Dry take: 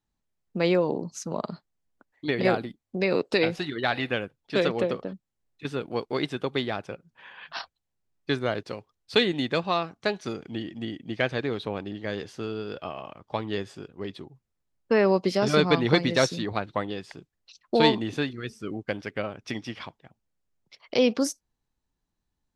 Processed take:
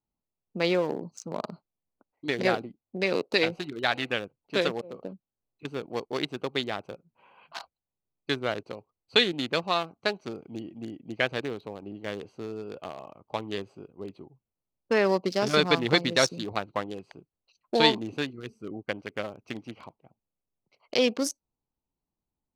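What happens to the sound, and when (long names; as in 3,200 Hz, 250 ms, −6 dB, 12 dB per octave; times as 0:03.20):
0:04.62–0:05.03: volume swells 262 ms
0:11.41–0:11.82: fade out, to −6 dB
whole clip: adaptive Wiener filter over 25 samples; spectral tilt +2 dB per octave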